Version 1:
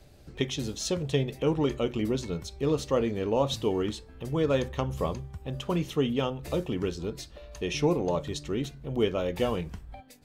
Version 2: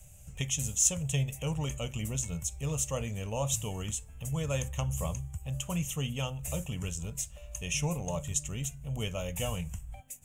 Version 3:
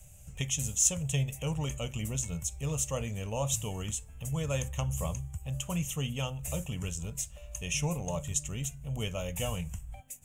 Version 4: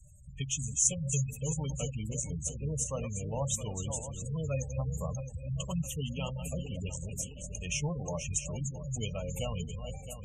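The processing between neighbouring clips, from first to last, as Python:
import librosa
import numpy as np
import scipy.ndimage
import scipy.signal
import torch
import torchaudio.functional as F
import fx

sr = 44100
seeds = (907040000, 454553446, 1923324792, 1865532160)

y1 = fx.curve_eq(x, sr, hz=(120.0, 170.0, 350.0, 590.0, 1700.0, 2800.0, 4400.0, 6900.0, 12000.0), db=(0, -4, -24, -8, -11, 0, -18, 14, 9))
y1 = F.gain(torch.from_numpy(y1), 2.0).numpy()
y2 = y1
y3 = fx.reverse_delay_fb(y2, sr, ms=333, feedback_pct=66, wet_db=-7.5)
y3 = fx.cheby_harmonics(y3, sr, harmonics=(3,), levels_db=(-24,), full_scale_db=-11.5)
y3 = fx.spec_gate(y3, sr, threshold_db=-20, keep='strong')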